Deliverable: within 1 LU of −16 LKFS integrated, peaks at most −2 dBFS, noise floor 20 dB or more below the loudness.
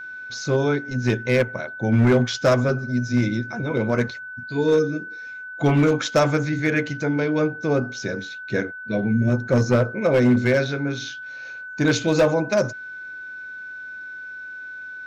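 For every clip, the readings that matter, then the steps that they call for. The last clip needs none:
share of clipped samples 0.9%; peaks flattened at −11.5 dBFS; interfering tone 1,500 Hz; level of the tone −33 dBFS; integrated loudness −21.5 LKFS; sample peak −11.5 dBFS; target loudness −16.0 LKFS
→ clipped peaks rebuilt −11.5 dBFS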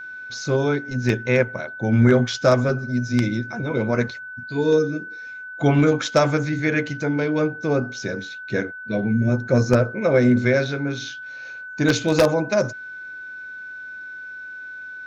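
share of clipped samples 0.0%; interfering tone 1,500 Hz; level of the tone −33 dBFS
→ notch filter 1,500 Hz, Q 30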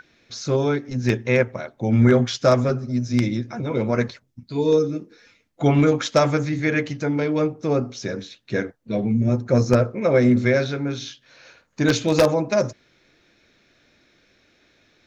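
interfering tone none found; integrated loudness −21.5 LKFS; sample peak −2.5 dBFS; target loudness −16.0 LKFS
→ level +5.5 dB
brickwall limiter −2 dBFS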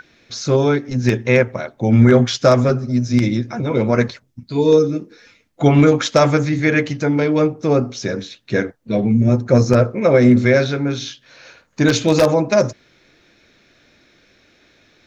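integrated loudness −16.5 LKFS; sample peak −2.0 dBFS; background noise floor −57 dBFS

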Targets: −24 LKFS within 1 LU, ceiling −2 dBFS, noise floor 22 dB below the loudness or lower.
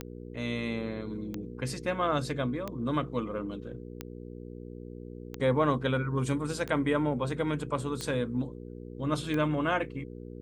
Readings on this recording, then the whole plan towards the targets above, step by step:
number of clicks 8; mains hum 60 Hz; hum harmonics up to 480 Hz; level of the hum −41 dBFS; integrated loudness −31.0 LKFS; sample peak −14.0 dBFS; target loudness −24.0 LKFS
→ click removal
hum removal 60 Hz, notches 8
level +7 dB

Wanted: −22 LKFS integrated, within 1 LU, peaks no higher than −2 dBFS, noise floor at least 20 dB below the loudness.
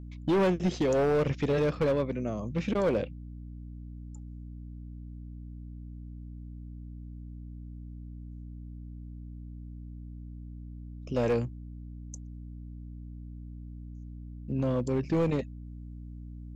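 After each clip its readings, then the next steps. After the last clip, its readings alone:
share of clipped samples 1.8%; peaks flattened at −21.5 dBFS; mains hum 60 Hz; hum harmonics up to 300 Hz; level of the hum −40 dBFS; integrated loudness −29.0 LKFS; sample peak −21.5 dBFS; target loudness −22.0 LKFS
→ clipped peaks rebuilt −21.5 dBFS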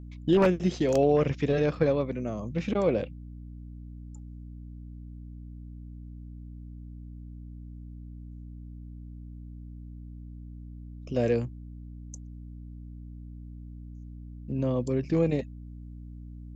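share of clipped samples 0.0%; mains hum 60 Hz; hum harmonics up to 300 Hz; level of the hum −40 dBFS
→ mains-hum notches 60/120/180/240/300 Hz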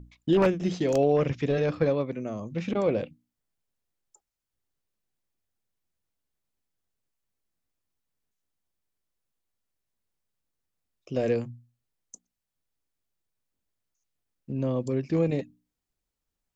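mains hum none found; integrated loudness −27.0 LKFS; sample peak −12.0 dBFS; target loudness −22.0 LKFS
→ level +5 dB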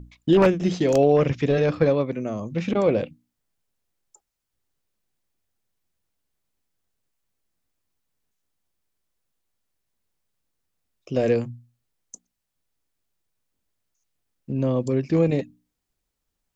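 integrated loudness −22.0 LKFS; sample peak −7.0 dBFS; background noise floor −81 dBFS

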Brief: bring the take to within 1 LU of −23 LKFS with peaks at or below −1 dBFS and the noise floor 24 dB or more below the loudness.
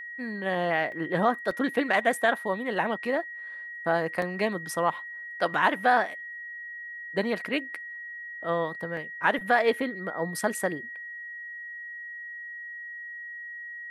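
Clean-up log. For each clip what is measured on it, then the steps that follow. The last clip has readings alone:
number of dropouts 4; longest dropout 2.0 ms; interfering tone 1,900 Hz; level of the tone −37 dBFS; integrated loudness −29.0 LKFS; sample peak −9.0 dBFS; target loudness −23.0 LKFS
→ repair the gap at 0:00.92/0:01.51/0:04.22/0:08.97, 2 ms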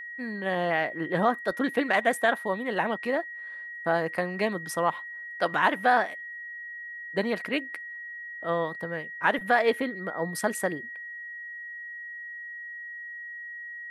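number of dropouts 0; interfering tone 1,900 Hz; level of the tone −37 dBFS
→ notch filter 1,900 Hz, Q 30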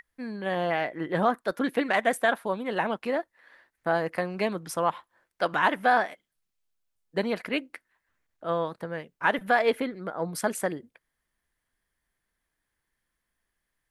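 interfering tone none found; integrated loudness −28.0 LKFS; sample peak −9.0 dBFS; target loudness −23.0 LKFS
→ level +5 dB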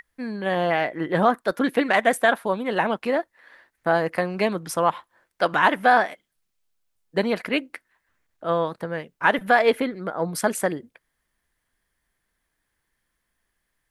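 integrated loudness −23.0 LKFS; sample peak −4.0 dBFS; background noise floor −77 dBFS

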